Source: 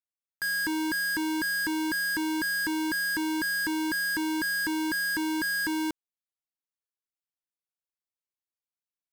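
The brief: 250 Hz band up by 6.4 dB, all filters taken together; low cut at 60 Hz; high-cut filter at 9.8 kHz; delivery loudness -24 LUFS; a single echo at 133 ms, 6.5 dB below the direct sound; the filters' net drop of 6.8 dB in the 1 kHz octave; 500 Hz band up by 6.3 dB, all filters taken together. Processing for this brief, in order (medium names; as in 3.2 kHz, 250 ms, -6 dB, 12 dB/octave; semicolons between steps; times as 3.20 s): high-pass 60 Hz; low-pass 9.8 kHz; peaking EQ 250 Hz +7.5 dB; peaking EQ 500 Hz +5 dB; peaking EQ 1 kHz -8.5 dB; delay 133 ms -6.5 dB; trim +0.5 dB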